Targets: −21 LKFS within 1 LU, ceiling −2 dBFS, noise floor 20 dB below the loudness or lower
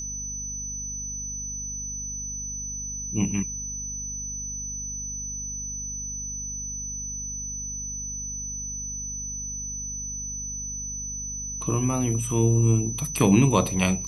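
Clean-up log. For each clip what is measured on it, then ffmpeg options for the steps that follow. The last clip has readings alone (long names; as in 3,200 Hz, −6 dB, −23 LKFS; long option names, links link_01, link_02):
mains hum 50 Hz; hum harmonics up to 250 Hz; level of the hum −37 dBFS; interfering tone 6,000 Hz; level of the tone −31 dBFS; integrated loudness −27.5 LKFS; sample peak −5.0 dBFS; target loudness −21.0 LKFS
→ -af "bandreject=frequency=50:width_type=h:width=4,bandreject=frequency=100:width_type=h:width=4,bandreject=frequency=150:width_type=h:width=4,bandreject=frequency=200:width_type=h:width=4,bandreject=frequency=250:width_type=h:width=4"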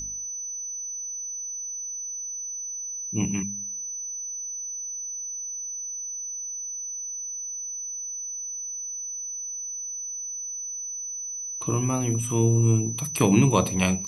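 mains hum none found; interfering tone 6,000 Hz; level of the tone −31 dBFS
→ -af "bandreject=frequency=6000:width=30"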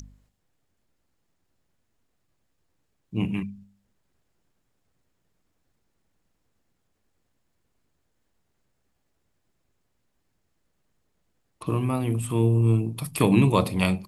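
interfering tone none found; integrated loudness −23.5 LKFS; sample peak −5.0 dBFS; target loudness −21.0 LKFS
→ -af "volume=2.5dB"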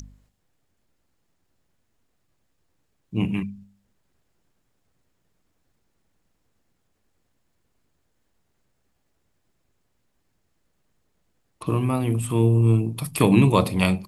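integrated loudness −21.5 LKFS; sample peak −2.5 dBFS; background noise floor −72 dBFS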